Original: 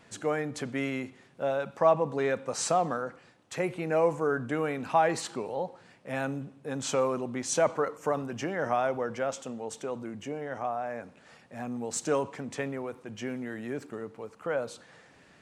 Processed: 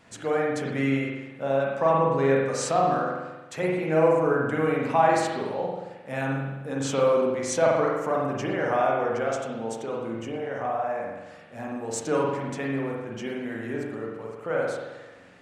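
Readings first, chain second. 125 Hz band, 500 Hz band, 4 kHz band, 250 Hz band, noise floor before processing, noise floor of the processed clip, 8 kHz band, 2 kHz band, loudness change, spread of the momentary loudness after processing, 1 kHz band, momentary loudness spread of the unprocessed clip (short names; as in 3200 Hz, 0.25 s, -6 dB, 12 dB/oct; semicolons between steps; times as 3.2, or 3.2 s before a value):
+7.0 dB, +5.0 dB, +2.0 dB, +6.0 dB, -58 dBFS, -46 dBFS, 0.0 dB, +5.0 dB, +5.0 dB, 13 LU, +5.0 dB, 13 LU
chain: spring tank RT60 1.1 s, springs 44 ms, chirp 75 ms, DRR -3 dB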